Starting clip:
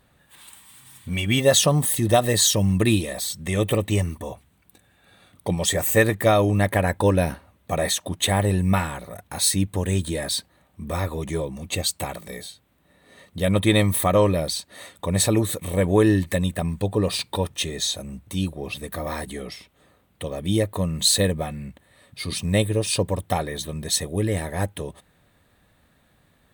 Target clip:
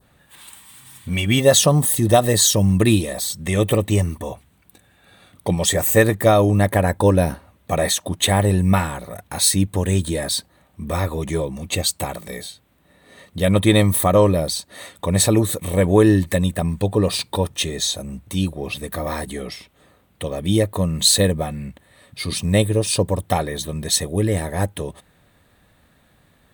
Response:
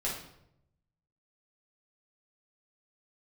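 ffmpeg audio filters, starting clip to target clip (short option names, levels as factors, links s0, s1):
-af "adynamicequalizer=threshold=0.01:dfrequency=2400:dqfactor=0.95:tfrequency=2400:tqfactor=0.95:attack=5:release=100:ratio=0.375:range=3:mode=cutabove:tftype=bell,volume=1.58"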